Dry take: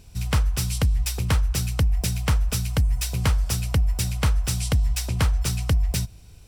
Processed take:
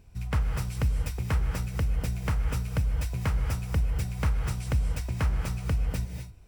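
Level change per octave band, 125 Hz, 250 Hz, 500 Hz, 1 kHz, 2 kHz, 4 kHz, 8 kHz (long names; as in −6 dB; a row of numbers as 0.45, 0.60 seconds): −5.0, −5.0, −4.5, −5.0, −6.0, −13.5, −14.5 decibels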